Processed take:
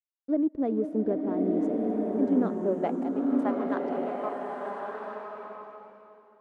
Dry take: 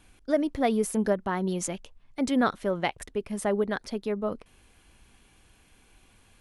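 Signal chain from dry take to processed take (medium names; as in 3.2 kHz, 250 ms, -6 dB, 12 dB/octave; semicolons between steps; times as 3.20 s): chunks repeated in reverse 296 ms, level -11 dB; hysteresis with a dead band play -30.5 dBFS; band-pass sweep 320 Hz -> 1 kHz, 2.38–3.43 s; swelling reverb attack 1290 ms, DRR -1.5 dB; trim +3.5 dB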